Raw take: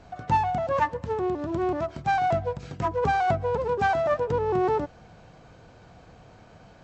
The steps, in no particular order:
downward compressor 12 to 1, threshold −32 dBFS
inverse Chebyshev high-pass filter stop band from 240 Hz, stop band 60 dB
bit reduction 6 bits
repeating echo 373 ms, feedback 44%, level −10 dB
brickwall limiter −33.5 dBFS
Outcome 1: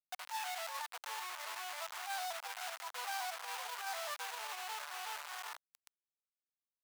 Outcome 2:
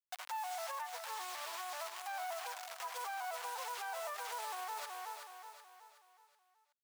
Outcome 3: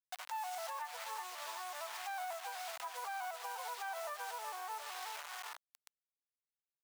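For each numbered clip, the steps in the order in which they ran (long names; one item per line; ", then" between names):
repeating echo, then downward compressor, then bit reduction, then brickwall limiter, then inverse Chebyshev high-pass filter
bit reduction, then inverse Chebyshev high-pass filter, then downward compressor, then repeating echo, then brickwall limiter
repeating echo, then bit reduction, then downward compressor, then inverse Chebyshev high-pass filter, then brickwall limiter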